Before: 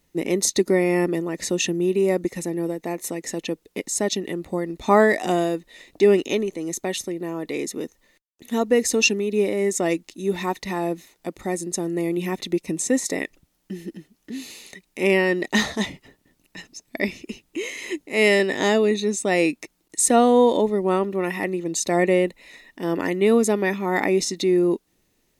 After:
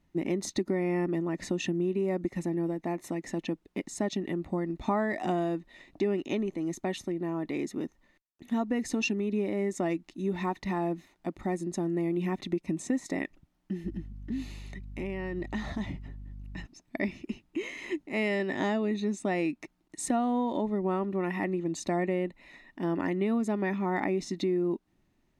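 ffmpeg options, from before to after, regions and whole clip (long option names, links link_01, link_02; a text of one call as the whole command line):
ffmpeg -i in.wav -filter_complex "[0:a]asettb=1/sr,asplit=3[link_01][link_02][link_03];[link_01]atrim=end=13.844[link_04];[link_02]atrim=start=13.84:end=16.66,asetpts=PTS-STARTPTS,afade=type=in:duration=0.004:curve=qsin,afade=type=out:start_time=2.816:duration=0.004:curve=qsin,acompressor=threshold=-29dB:ratio=6:attack=3.2:release=140:knee=1:detection=peak,aeval=exprs='val(0)+0.00447*(sin(2*PI*50*n/s)+sin(2*PI*2*50*n/s)/2+sin(2*PI*3*50*n/s)/3+sin(2*PI*4*50*n/s)/4+sin(2*PI*5*50*n/s)/5)':channel_layout=same,lowshelf=frequency=140:gain=7.5[link_05];[link_03]atrim=start=16.656[link_06];[link_04][link_05]acrossfade=duration=0.004:curve1=hsin:curve2=qsin[link_07];[link_07][link_06]acrossfade=duration=0.004:curve1=qsin:curve2=hsin,lowpass=frequency=1100:poles=1,equalizer=frequency=470:width=3.6:gain=-13,acompressor=threshold=-26dB:ratio=4" out.wav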